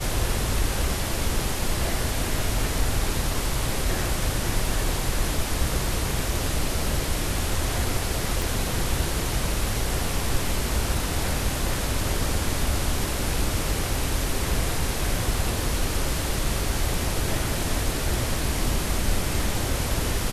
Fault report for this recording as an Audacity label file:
8.420000	8.420000	pop

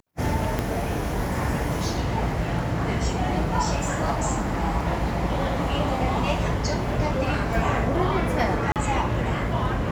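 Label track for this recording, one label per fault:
0.590000	0.590000	pop -11 dBFS
8.720000	8.760000	gap 38 ms

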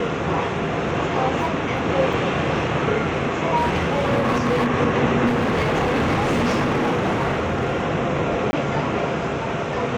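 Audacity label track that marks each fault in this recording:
2.130000	2.130000	gap 2.6 ms
3.560000	4.680000	clipped -16 dBFS
5.260000	7.840000	clipped -16.5 dBFS
8.510000	8.530000	gap 20 ms

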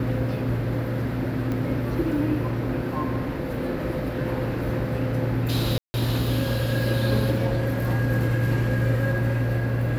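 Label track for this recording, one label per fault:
1.520000	1.520000	pop -18 dBFS
5.780000	5.940000	gap 0.16 s

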